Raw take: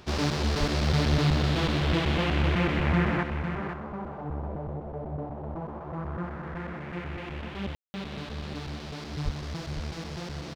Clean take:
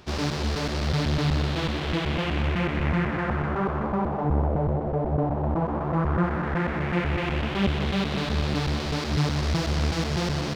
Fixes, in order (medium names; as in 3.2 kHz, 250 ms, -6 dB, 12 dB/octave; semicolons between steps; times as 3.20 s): 0.59–0.71 s: high-pass 140 Hz 24 dB/octave; 9.24–9.36 s: high-pass 140 Hz 24 dB/octave; room tone fill 7.75–7.94 s; inverse comb 504 ms -8.5 dB; trim 0 dB, from 3.23 s +11 dB